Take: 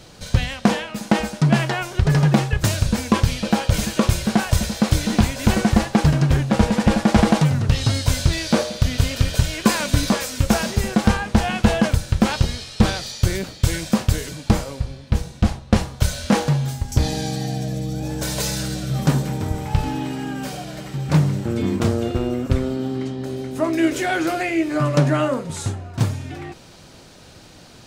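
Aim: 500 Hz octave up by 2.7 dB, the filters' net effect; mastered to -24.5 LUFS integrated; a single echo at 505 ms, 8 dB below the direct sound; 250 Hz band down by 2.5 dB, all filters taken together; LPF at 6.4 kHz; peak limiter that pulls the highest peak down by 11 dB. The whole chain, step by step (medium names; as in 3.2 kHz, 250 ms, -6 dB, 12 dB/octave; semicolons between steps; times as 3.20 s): low-pass 6.4 kHz; peaking EQ 250 Hz -4.5 dB; peaking EQ 500 Hz +4.5 dB; peak limiter -13.5 dBFS; delay 505 ms -8 dB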